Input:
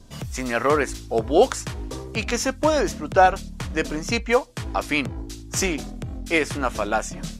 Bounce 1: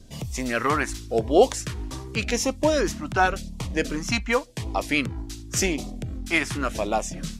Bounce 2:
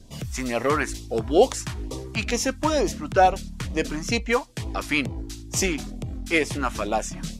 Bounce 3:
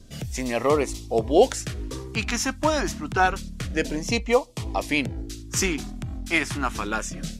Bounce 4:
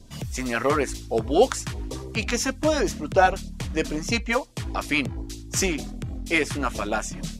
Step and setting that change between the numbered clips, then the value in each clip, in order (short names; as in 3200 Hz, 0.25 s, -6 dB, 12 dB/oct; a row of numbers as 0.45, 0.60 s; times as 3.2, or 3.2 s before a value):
LFO notch, rate: 0.9, 2.2, 0.28, 6.4 Hz